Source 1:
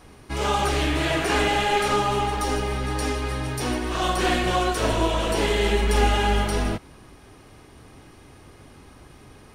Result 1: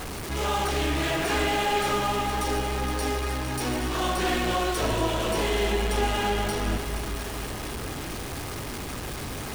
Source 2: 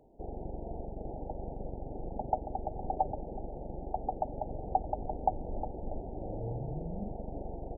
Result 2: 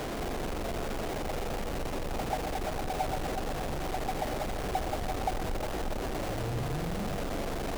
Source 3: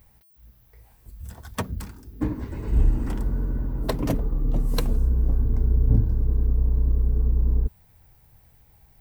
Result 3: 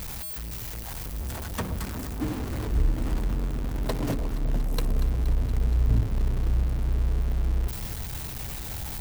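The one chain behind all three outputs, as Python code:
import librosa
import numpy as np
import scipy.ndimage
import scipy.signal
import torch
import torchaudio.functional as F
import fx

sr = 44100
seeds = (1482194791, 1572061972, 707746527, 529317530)

y = x + 0.5 * 10.0 ** (-23.0 / 20.0) * np.sign(x)
y = fx.echo_alternate(y, sr, ms=118, hz=970.0, feedback_pct=86, wet_db=-10.5)
y = y * librosa.db_to_amplitude(-6.5)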